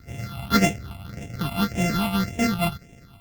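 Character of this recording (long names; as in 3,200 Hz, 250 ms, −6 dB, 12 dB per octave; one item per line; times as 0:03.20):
a buzz of ramps at a fixed pitch in blocks of 64 samples
phaser sweep stages 6, 1.8 Hz, lowest notch 450–1,200 Hz
Opus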